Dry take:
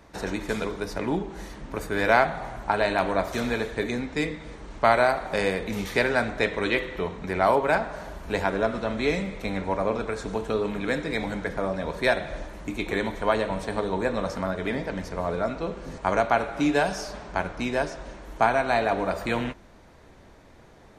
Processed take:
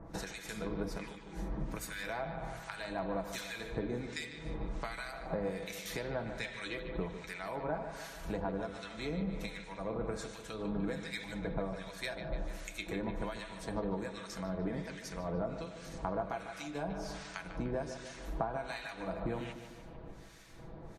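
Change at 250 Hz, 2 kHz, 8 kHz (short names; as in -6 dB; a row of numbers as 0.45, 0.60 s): -10.5, -15.0, -5.5 dB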